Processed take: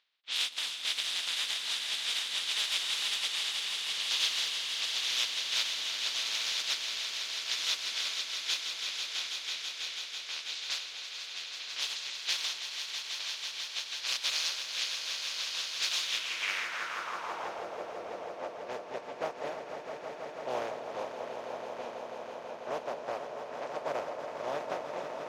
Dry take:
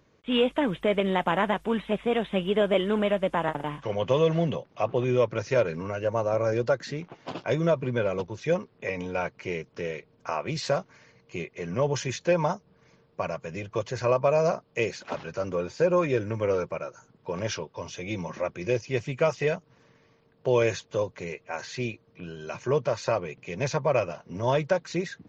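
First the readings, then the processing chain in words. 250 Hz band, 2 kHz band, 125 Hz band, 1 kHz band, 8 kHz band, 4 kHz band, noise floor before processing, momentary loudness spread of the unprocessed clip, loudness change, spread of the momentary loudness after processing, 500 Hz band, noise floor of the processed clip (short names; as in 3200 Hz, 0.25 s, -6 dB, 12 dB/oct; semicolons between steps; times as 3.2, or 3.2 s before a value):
-23.0 dB, -2.0 dB, under -30 dB, -8.5 dB, n/a, +10.0 dB, -63 dBFS, 12 LU, -5.0 dB, 11 LU, -16.0 dB, -44 dBFS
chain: spectral contrast lowered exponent 0.18; low-pass opened by the level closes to 2500 Hz, open at -21 dBFS; on a send: swelling echo 0.164 s, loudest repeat 5, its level -9.5 dB; on the sum: band-pass sweep 3800 Hz -> 620 Hz, 16.05–17.68; echo with dull and thin repeats by turns 0.22 s, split 990 Hz, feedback 61%, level -10 dB; reverse; upward compressor, threshold -38 dBFS; reverse; gain -2 dB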